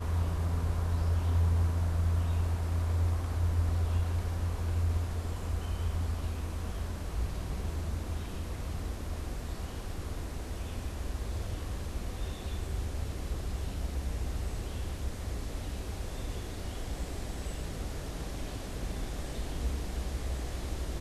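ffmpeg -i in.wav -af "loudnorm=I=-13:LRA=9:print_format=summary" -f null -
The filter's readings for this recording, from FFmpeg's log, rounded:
Input Integrated:    -35.3 LUFS
Input True Peak:     -18.2 dBTP
Input LRA:             8.5 LU
Input Threshold:     -45.3 LUFS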